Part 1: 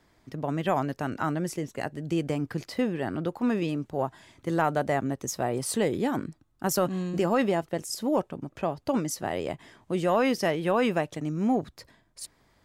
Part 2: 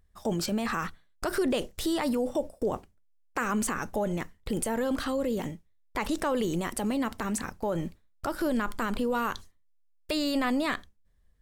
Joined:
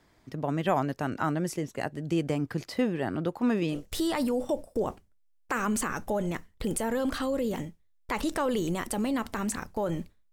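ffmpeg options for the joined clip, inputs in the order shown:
-filter_complex "[0:a]apad=whole_dur=10.32,atrim=end=10.32,atrim=end=3.84,asetpts=PTS-STARTPTS[a];[1:a]atrim=start=1.56:end=8.18,asetpts=PTS-STARTPTS[b];[a][b]acrossfade=d=0.14:c1=tri:c2=tri"

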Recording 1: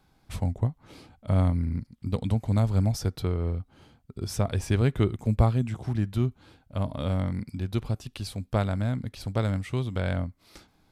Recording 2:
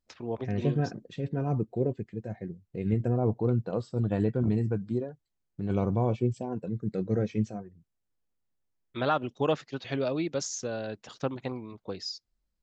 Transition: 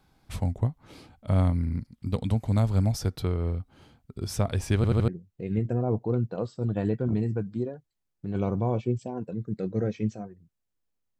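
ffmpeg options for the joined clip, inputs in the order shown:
-filter_complex "[0:a]apad=whole_dur=11.19,atrim=end=11.19,asplit=4[a][b][c][d];[a]atrim=end=4.842[e];[b]atrim=start=4.758:end=4.842[f];[c]atrim=start=4.758:end=4.842[g];[d]atrim=start=4.758:end=4.842[h];[1:a]atrim=start=2.428:end=8.54[i];[e][f]acrossfade=d=0.004:c1=hsin:c2=hsin[j];[j][g]acrossfade=d=0.004:c1=hsin:c2=hsin[k];[k][h]acrossfade=d=0.004:c1=hsin:c2=hsin[l];[l][i]acrossfade=d=0.004:c1=hsin:c2=hsin"

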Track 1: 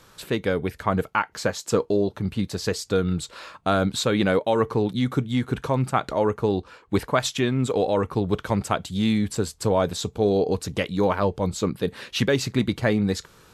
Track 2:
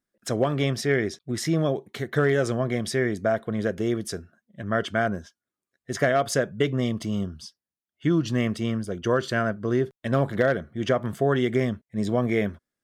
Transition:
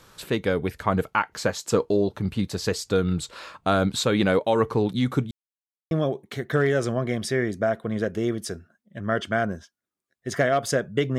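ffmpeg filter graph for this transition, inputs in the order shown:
-filter_complex "[0:a]apad=whole_dur=11.18,atrim=end=11.18,asplit=2[a][b];[a]atrim=end=5.31,asetpts=PTS-STARTPTS,afade=t=out:st=5.306:d=0.004:c=hsin[c];[b]atrim=start=5.31:end=5.91,asetpts=PTS-STARTPTS,volume=0[d];[1:a]atrim=start=1.54:end=6.81,asetpts=PTS-STARTPTS,afade=t=in:d=0.004:c=hsin[e];[c][d][e]concat=n=3:v=0:a=1"

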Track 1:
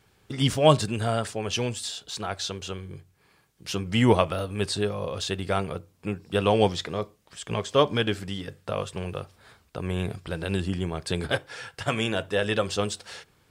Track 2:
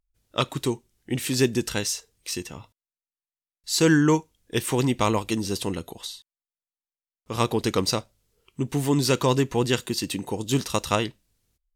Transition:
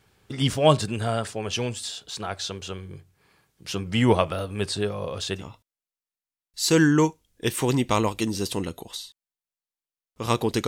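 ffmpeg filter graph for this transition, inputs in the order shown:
-filter_complex "[0:a]apad=whole_dur=10.67,atrim=end=10.67,atrim=end=5.45,asetpts=PTS-STARTPTS[a];[1:a]atrim=start=2.45:end=7.77,asetpts=PTS-STARTPTS[b];[a][b]acrossfade=d=0.1:c1=tri:c2=tri"

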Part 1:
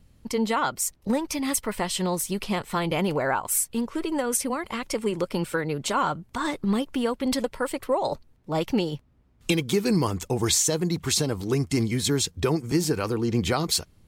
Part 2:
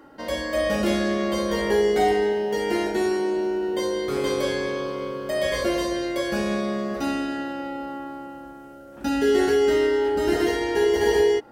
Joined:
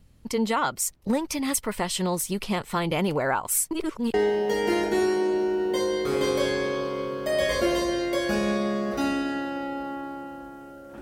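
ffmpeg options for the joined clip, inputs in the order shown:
-filter_complex "[0:a]apad=whole_dur=11.01,atrim=end=11.01,asplit=2[a][b];[a]atrim=end=3.712[c];[b]atrim=start=3.708:end=4.142,asetpts=PTS-STARTPTS,areverse[d];[1:a]atrim=start=2.168:end=9.04[e];[c][d]acrossfade=d=0.004:c1=hsin:c2=hsin[f];[f][e]acrossfade=d=0.004:c1=hsin:c2=hsin"

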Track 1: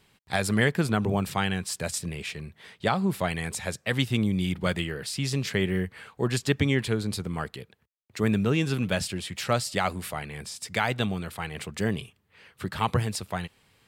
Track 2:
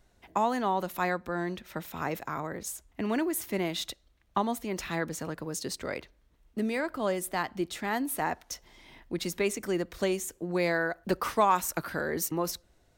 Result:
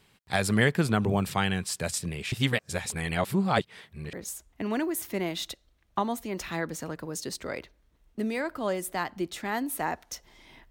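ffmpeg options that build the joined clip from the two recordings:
-filter_complex "[0:a]apad=whole_dur=10.7,atrim=end=10.7,asplit=2[a][b];[a]atrim=end=2.322[c];[b]atrim=start=2.318:end=4.132,asetpts=PTS-STARTPTS,areverse[d];[1:a]atrim=start=2.518:end=9.09[e];[c][d]acrossfade=d=0.004:c1=hsin:c2=hsin[f];[f][e]acrossfade=d=0.004:c1=hsin:c2=hsin"

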